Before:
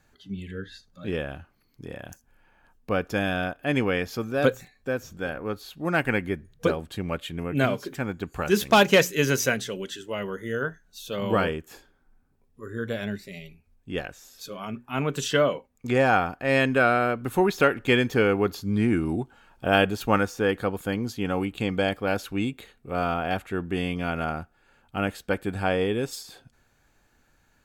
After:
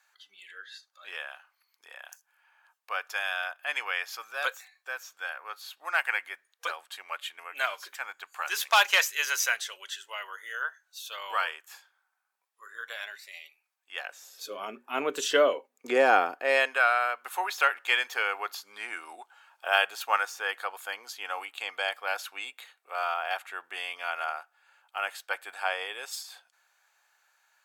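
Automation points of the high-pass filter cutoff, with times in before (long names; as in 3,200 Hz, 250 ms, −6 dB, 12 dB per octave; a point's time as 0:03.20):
high-pass filter 24 dB per octave
0:13.93 890 Hz
0:14.47 340 Hz
0:16.32 340 Hz
0:16.82 780 Hz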